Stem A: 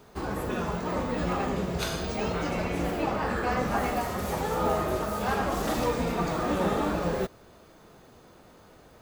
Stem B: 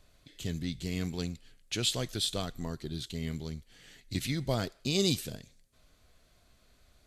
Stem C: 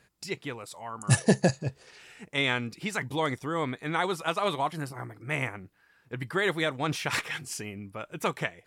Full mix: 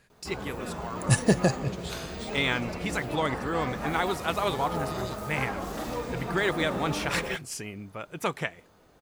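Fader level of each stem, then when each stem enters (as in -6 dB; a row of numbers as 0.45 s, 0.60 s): -6.0 dB, -14.0 dB, 0.0 dB; 0.10 s, 0.00 s, 0.00 s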